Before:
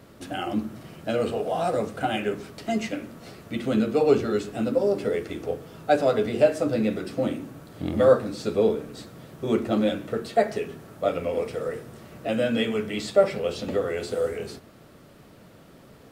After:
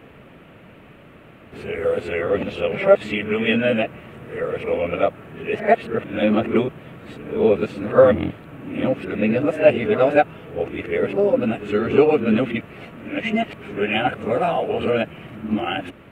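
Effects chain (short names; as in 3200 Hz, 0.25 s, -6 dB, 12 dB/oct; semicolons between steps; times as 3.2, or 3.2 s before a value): whole clip reversed; resonant high shelf 3600 Hz -11.5 dB, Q 3; gain +4.5 dB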